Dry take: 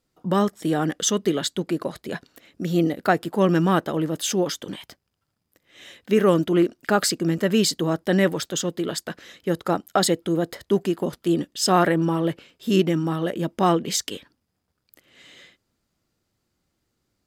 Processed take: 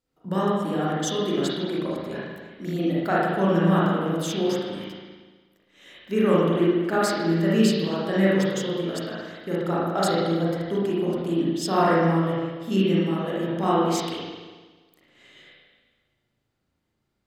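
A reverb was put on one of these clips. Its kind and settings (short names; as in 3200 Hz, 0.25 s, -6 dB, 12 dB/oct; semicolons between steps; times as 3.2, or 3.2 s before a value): spring tank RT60 1.4 s, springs 36/58 ms, chirp 20 ms, DRR -7.5 dB; gain -9 dB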